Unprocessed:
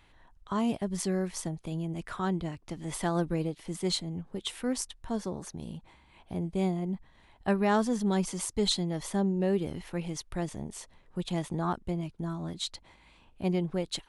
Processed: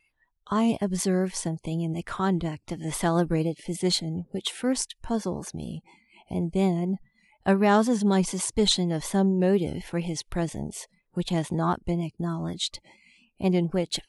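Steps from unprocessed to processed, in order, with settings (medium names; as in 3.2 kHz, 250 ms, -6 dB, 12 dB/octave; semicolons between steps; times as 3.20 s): spectral noise reduction 25 dB; vibrato 4.1 Hz 38 cents; trim +5.5 dB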